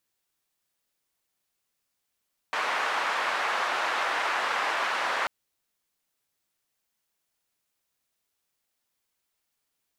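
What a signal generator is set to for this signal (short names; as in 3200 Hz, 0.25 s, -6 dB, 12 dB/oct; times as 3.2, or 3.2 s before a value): noise band 910–1300 Hz, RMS -28 dBFS 2.74 s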